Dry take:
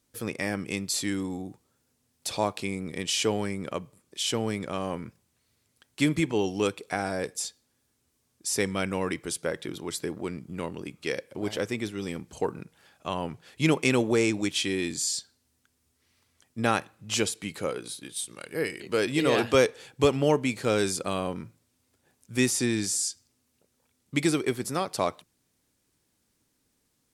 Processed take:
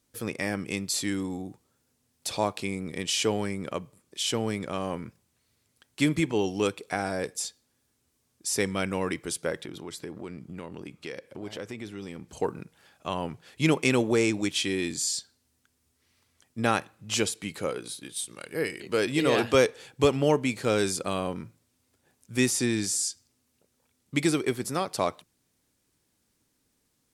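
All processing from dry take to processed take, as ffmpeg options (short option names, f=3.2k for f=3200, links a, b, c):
-filter_complex "[0:a]asettb=1/sr,asplit=3[a][b][c];[a]atrim=end=9.644[d];[b]atrim=start=9.64:end=12.29,asetpts=PTS-STARTPTS,afade=t=in:d=0.004:c=qsin,afade=t=out:st=2.646:d=0.004:c=qsin,highshelf=f=6.2k:g=-6,acompressor=threshold=-36dB:ratio=2.5:attack=3.2:release=140:knee=1:detection=peak[e];[c]atrim=start=12.286[f];[d][e]acrossfade=d=0.004:c1=hsin:c2=qsin[g];[g][f]acrossfade=d=0.004:c1=qsin:c2=hsin"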